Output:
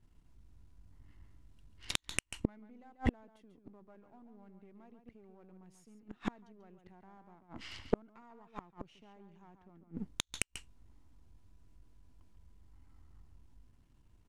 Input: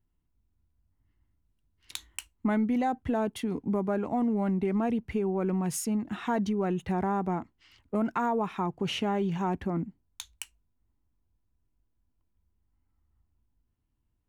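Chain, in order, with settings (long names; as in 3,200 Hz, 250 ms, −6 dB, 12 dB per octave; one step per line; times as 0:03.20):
gain on one half-wave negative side −7 dB
low-pass filter 9,100 Hz
slap from a distant wall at 24 metres, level −8 dB
gate with flip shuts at −27 dBFS, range −41 dB
level +13 dB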